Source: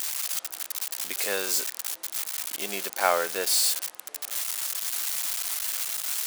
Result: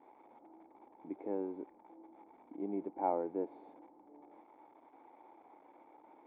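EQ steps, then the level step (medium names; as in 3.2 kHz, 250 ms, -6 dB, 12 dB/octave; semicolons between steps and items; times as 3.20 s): cascade formant filter u; distance through air 160 m; +8.5 dB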